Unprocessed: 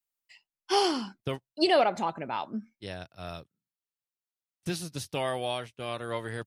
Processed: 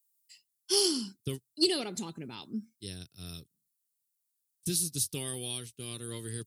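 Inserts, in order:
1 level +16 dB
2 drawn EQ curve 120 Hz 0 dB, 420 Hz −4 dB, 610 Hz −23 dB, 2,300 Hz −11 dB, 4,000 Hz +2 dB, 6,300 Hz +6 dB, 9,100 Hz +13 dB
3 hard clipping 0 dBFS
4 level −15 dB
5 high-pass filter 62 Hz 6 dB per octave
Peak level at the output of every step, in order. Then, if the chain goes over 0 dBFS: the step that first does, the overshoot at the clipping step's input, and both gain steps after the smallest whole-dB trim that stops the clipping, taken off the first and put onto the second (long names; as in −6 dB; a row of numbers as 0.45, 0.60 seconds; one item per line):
+3.0, +3.5, 0.0, −15.0, −14.5 dBFS
step 1, 3.5 dB
step 1 +12 dB, step 4 −11 dB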